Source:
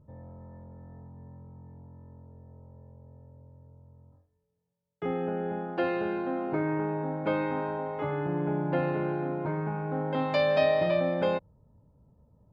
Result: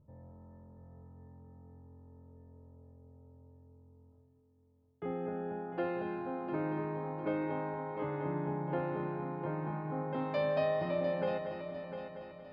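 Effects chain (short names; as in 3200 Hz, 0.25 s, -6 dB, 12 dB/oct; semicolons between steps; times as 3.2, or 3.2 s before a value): high shelf 2600 Hz -10 dB; multi-head echo 0.234 s, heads first and third, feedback 57%, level -9 dB; gain -6.5 dB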